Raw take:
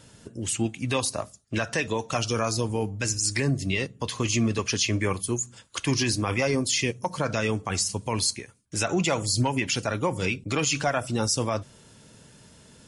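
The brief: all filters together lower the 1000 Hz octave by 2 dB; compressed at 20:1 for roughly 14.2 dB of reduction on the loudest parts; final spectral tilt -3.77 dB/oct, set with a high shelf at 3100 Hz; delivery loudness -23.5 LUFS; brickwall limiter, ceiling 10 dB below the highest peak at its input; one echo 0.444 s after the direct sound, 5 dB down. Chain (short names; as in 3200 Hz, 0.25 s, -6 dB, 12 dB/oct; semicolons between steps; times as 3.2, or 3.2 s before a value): bell 1000 Hz -3 dB; high shelf 3100 Hz +3.5 dB; compressor 20:1, threshold -33 dBFS; limiter -30.5 dBFS; echo 0.444 s -5 dB; gain +16 dB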